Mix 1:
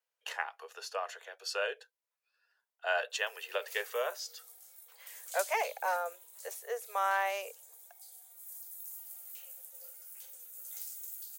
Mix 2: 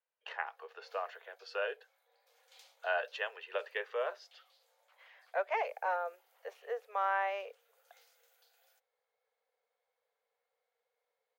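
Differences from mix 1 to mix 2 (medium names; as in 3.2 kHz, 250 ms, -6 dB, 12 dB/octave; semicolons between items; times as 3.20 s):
background: entry -2.80 s; master: add distance through air 320 m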